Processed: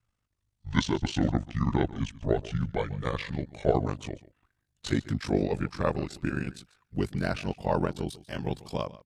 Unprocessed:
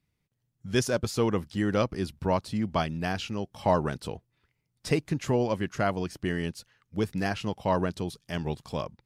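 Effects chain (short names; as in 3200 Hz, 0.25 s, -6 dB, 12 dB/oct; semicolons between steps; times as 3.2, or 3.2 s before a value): gliding pitch shift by -9.5 st ending unshifted; ring modulator 25 Hz; echo 0.142 s -18.5 dB; gain +3.5 dB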